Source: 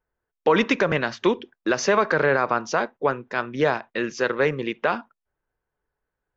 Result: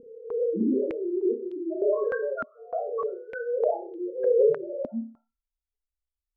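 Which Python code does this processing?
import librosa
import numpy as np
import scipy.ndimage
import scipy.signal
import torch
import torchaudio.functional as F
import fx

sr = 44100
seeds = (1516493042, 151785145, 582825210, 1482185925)

p1 = fx.spec_swells(x, sr, rise_s=1.67)
p2 = fx.highpass(p1, sr, hz=170.0, slope=24, at=(0.81, 1.77), fade=0.02)
p3 = fx.spec_topn(p2, sr, count=2)
p4 = p3 + fx.room_flutter(p3, sr, wall_m=5.3, rt60_s=0.37, dry=0)
p5 = fx.filter_held_lowpass(p4, sr, hz=3.3, low_hz=250.0, high_hz=3300.0)
y = p5 * 10.0 ** (-7.0 / 20.0)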